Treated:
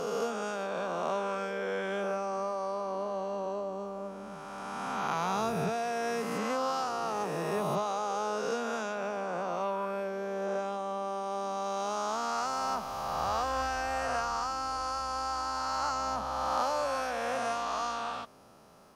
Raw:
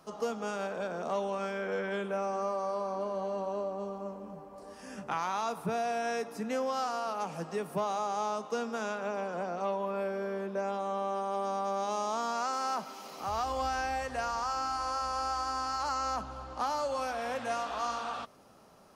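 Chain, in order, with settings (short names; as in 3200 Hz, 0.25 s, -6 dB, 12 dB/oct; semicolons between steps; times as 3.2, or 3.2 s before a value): spectral swells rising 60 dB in 2.84 s; gain -2 dB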